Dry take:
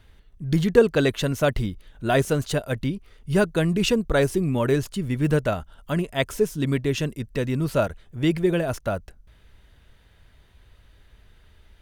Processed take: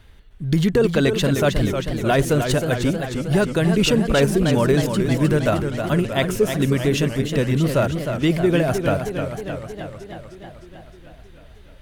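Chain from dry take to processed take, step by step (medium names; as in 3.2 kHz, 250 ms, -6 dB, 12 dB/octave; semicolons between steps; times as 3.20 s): peak limiter -13 dBFS, peak gain reduction 9.5 dB; modulated delay 312 ms, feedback 67%, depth 128 cents, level -7 dB; trim +4.5 dB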